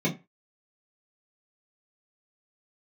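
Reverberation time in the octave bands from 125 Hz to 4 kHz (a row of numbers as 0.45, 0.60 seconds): 0.25, 0.25, 0.25, 0.25, 0.25, 0.20 seconds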